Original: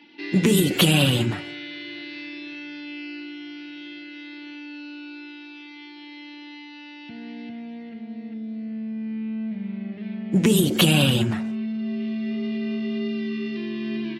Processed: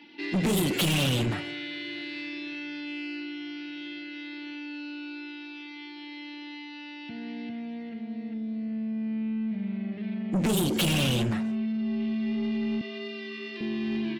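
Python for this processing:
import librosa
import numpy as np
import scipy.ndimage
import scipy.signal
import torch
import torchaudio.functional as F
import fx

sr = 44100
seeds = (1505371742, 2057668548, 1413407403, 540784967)

y = fx.highpass(x, sr, hz=520.0, slope=12, at=(12.81, 13.61))
y = 10.0 ** (-22.0 / 20.0) * np.tanh(y / 10.0 ** (-22.0 / 20.0))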